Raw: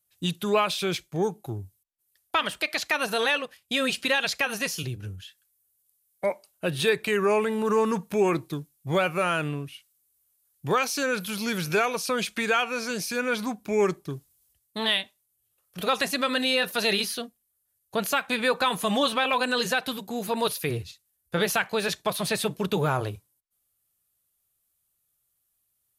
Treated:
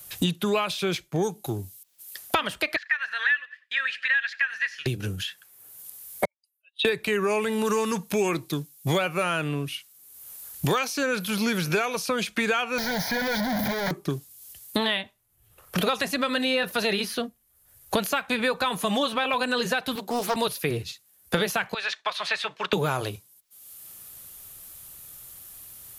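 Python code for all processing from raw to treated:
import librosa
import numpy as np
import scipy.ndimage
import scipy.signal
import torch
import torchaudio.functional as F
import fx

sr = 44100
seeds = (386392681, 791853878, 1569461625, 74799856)

y = fx.chain(x, sr, fx.ladder_bandpass(hz=1800.0, resonance_pct=85),
    fx.echo_feedback(ms=94, feedback_pct=26, wet_db=-22.0), at=(2.76, 4.86))
y = fx.chain(y, sr, fx.spec_expand(power=2.3),
    fx.ladder_highpass(hz=2100.0, resonance_pct=35),
    fx.upward_expand(threshold_db=-51.0, expansion=2.5), at=(6.25, 6.85))
y = fx.chain(y, sr, fx.clip_1bit(),
    fx.fixed_phaser(hz=1800.0, stages=8), at=(12.78, 13.91))
y = fx.chain(y, sr, fx.block_float(bits=7),
    fx.highpass(hz=290.0, slope=12),
    fx.doppler_dist(depth_ms=0.3), at=(19.95, 20.36))
y = fx.chain(y, sr, fx.highpass(hz=1400.0, slope=12),
    fx.air_absorb(metres=140.0), at=(21.74, 22.73))
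y = fx.peak_eq(y, sr, hz=8500.0, db=-2.0, octaves=0.3)
y = fx.band_squash(y, sr, depth_pct=100)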